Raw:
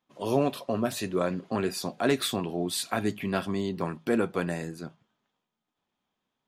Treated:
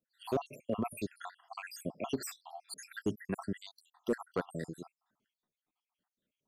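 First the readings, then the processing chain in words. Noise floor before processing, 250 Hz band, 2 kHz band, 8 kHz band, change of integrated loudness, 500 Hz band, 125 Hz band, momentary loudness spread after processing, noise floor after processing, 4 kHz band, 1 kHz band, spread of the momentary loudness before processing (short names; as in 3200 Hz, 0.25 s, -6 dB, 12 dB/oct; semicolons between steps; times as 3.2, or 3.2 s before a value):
-84 dBFS, -10.0 dB, -10.5 dB, -10.5 dB, -10.0 dB, -10.0 dB, -10.5 dB, 11 LU, under -85 dBFS, -14.5 dB, -9.5 dB, 6 LU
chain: random spectral dropouts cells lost 76%; hard clip -20 dBFS, distortion -17 dB; gain -3 dB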